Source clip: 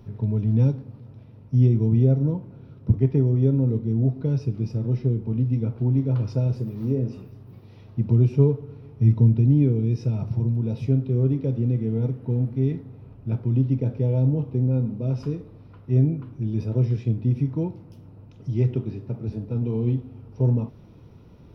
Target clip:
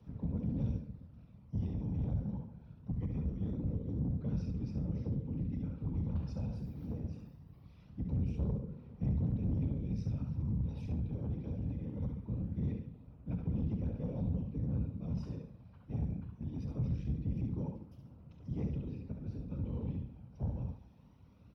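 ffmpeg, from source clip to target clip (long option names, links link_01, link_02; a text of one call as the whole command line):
ffmpeg -i in.wav -filter_complex "[0:a]asplit=2[link_01][link_02];[link_02]aecho=0:1:69|138|207|276:0.562|0.197|0.0689|0.0241[link_03];[link_01][link_03]amix=inputs=2:normalize=0,afftfilt=real='hypot(re,im)*cos(2*PI*random(0))':imag='hypot(re,im)*sin(2*PI*random(1))':win_size=512:overlap=0.75,acrossover=split=130|1200[link_04][link_05][link_06];[link_05]alimiter=limit=-22dB:level=0:latency=1:release=313[link_07];[link_04][link_07][link_06]amix=inputs=3:normalize=0,asoftclip=type=tanh:threshold=-22dB,equalizer=frequency=370:width=3.6:gain=-8,acrossover=split=250|3000[link_08][link_09][link_10];[link_09]acompressor=threshold=-37dB:ratio=2.5[link_11];[link_08][link_11][link_10]amix=inputs=3:normalize=0,highpass=frequency=47:width=0.5412,highpass=frequency=47:width=1.3066,aphaser=in_gain=1:out_gain=1:delay=1.3:decay=0.26:speed=0.22:type=sinusoidal,adynamicequalizer=threshold=0.00112:dfrequency=660:dqfactor=4.8:tfrequency=660:tqfactor=4.8:attack=5:release=100:ratio=0.375:range=3:mode=cutabove:tftype=bell,volume=-7dB" out.wav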